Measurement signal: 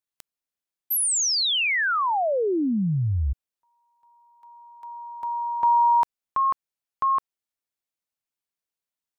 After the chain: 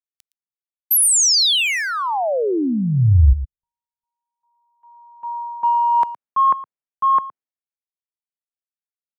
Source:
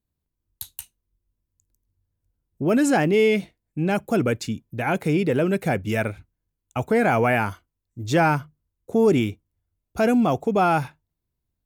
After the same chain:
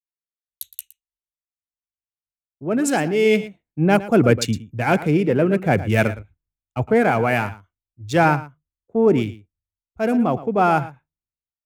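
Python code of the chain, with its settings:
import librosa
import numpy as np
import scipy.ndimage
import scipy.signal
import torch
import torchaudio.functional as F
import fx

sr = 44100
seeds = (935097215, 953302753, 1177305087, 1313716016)

p1 = fx.wiener(x, sr, points=9)
p2 = p1 + fx.echo_single(p1, sr, ms=115, db=-13.5, dry=0)
p3 = fx.rider(p2, sr, range_db=4, speed_s=0.5)
p4 = fx.band_widen(p3, sr, depth_pct=100)
y = p4 * librosa.db_to_amplitude(3.0)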